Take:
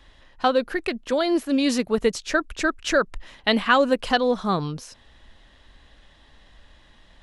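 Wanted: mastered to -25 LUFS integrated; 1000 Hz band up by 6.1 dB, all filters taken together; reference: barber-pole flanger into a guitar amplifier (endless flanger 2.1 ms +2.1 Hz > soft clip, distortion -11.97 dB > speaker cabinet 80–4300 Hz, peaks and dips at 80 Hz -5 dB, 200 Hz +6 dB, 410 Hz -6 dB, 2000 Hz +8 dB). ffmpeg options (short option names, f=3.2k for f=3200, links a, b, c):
-filter_complex "[0:a]equalizer=f=1k:t=o:g=8,asplit=2[a][b];[b]adelay=2.1,afreqshift=2.1[c];[a][c]amix=inputs=2:normalize=1,asoftclip=threshold=-15.5dB,highpass=80,equalizer=f=80:t=q:w=4:g=-5,equalizer=f=200:t=q:w=4:g=6,equalizer=f=410:t=q:w=4:g=-6,equalizer=f=2k:t=q:w=4:g=8,lowpass=f=4.3k:w=0.5412,lowpass=f=4.3k:w=1.3066"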